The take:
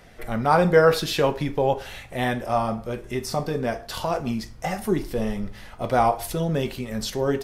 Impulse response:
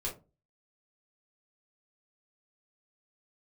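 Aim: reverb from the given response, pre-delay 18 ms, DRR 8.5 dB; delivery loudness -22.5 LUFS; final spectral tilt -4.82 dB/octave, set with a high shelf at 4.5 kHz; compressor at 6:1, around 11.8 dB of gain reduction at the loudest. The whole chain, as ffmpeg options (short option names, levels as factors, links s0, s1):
-filter_complex "[0:a]highshelf=f=4500:g=4.5,acompressor=threshold=0.0631:ratio=6,asplit=2[s0][s1];[1:a]atrim=start_sample=2205,adelay=18[s2];[s1][s2]afir=irnorm=-1:irlink=0,volume=0.299[s3];[s0][s3]amix=inputs=2:normalize=0,volume=2.11"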